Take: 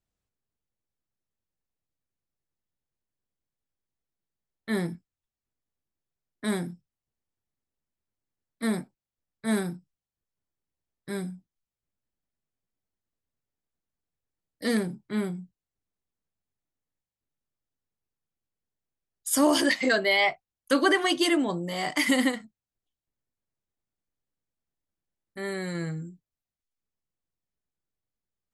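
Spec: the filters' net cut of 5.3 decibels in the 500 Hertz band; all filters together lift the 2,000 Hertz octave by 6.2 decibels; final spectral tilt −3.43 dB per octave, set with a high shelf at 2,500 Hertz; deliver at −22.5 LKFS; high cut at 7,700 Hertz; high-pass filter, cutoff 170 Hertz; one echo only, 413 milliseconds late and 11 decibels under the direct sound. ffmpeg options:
ffmpeg -i in.wav -af "highpass=170,lowpass=7700,equalizer=frequency=500:width_type=o:gain=-7.5,equalizer=frequency=2000:width_type=o:gain=8.5,highshelf=frequency=2500:gain=-3,aecho=1:1:413:0.282,volume=2dB" out.wav

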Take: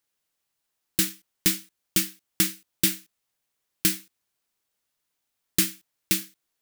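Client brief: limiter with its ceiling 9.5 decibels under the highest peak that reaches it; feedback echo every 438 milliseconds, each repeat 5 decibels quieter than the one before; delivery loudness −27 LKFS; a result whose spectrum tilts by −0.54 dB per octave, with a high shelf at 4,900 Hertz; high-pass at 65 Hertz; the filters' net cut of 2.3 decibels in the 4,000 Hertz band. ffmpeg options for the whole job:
ffmpeg -i in.wav -af "highpass=65,equalizer=frequency=4000:width_type=o:gain=-6.5,highshelf=frequency=4900:gain=6.5,alimiter=limit=-10.5dB:level=0:latency=1,aecho=1:1:438|876|1314|1752|2190|2628|3066:0.562|0.315|0.176|0.0988|0.0553|0.031|0.0173,volume=-0.5dB" out.wav

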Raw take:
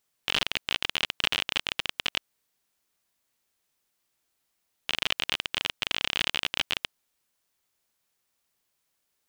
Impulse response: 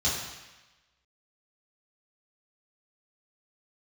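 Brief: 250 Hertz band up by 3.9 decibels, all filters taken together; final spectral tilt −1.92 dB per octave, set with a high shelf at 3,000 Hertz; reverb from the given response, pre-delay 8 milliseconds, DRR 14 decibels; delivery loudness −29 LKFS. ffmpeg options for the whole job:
-filter_complex "[0:a]equalizer=frequency=250:width_type=o:gain=5,highshelf=frequency=3000:gain=6.5,asplit=2[link_01][link_02];[1:a]atrim=start_sample=2205,adelay=8[link_03];[link_02][link_03]afir=irnorm=-1:irlink=0,volume=-24dB[link_04];[link_01][link_04]amix=inputs=2:normalize=0,volume=-4dB"

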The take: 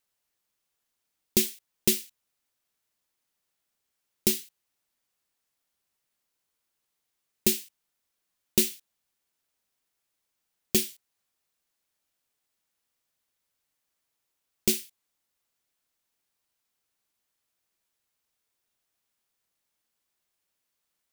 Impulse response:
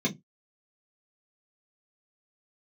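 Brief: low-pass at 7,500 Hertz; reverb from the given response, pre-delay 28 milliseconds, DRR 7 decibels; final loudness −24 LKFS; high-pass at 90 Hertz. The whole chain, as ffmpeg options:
-filter_complex "[0:a]highpass=90,lowpass=7500,asplit=2[link_01][link_02];[1:a]atrim=start_sample=2205,adelay=28[link_03];[link_02][link_03]afir=irnorm=-1:irlink=0,volume=-15.5dB[link_04];[link_01][link_04]amix=inputs=2:normalize=0,volume=4.5dB"

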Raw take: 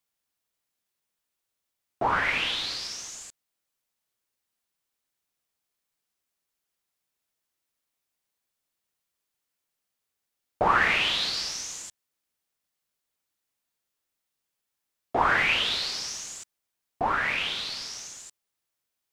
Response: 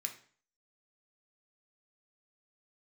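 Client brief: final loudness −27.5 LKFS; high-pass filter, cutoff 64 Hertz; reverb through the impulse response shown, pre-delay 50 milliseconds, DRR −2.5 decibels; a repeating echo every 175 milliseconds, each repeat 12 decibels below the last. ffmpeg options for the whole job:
-filter_complex "[0:a]highpass=64,aecho=1:1:175|350|525:0.251|0.0628|0.0157,asplit=2[link_01][link_02];[1:a]atrim=start_sample=2205,adelay=50[link_03];[link_02][link_03]afir=irnorm=-1:irlink=0,volume=3.5dB[link_04];[link_01][link_04]amix=inputs=2:normalize=0,volume=-6dB"

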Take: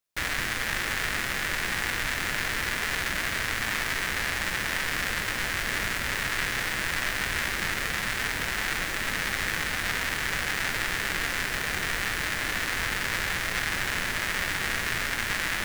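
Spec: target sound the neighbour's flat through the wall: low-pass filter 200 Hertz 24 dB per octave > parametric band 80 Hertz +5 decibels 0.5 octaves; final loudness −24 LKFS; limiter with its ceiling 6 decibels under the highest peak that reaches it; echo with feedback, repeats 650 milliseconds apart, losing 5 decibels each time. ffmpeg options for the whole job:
ffmpeg -i in.wav -af "alimiter=limit=-17dB:level=0:latency=1,lowpass=frequency=200:width=0.5412,lowpass=frequency=200:width=1.3066,equalizer=frequency=80:width_type=o:width=0.5:gain=5,aecho=1:1:650|1300|1950|2600|3250|3900|4550:0.562|0.315|0.176|0.0988|0.0553|0.031|0.0173,volume=19.5dB" out.wav

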